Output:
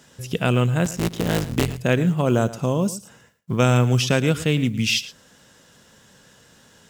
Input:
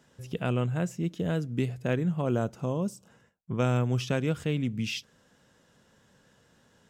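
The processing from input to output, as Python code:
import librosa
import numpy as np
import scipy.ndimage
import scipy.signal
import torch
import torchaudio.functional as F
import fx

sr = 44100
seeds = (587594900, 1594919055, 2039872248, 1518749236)

p1 = fx.cycle_switch(x, sr, every=3, mode='muted', at=(0.84, 1.78), fade=0.02)
p2 = fx.high_shelf(p1, sr, hz=2400.0, db=8.0)
p3 = fx.quant_companded(p2, sr, bits=8)
p4 = p3 + fx.echo_single(p3, sr, ms=113, db=-16.5, dry=0)
y = p4 * 10.0 ** (8.0 / 20.0)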